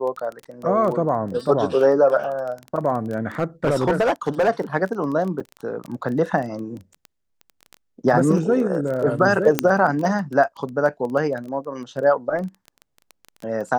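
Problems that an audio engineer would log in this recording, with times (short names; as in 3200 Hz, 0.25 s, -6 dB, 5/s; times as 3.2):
crackle 15/s -27 dBFS
3.39–4.49 clipped -14 dBFS
5.4–5.41 gap 5 ms
9.59 pop -1 dBFS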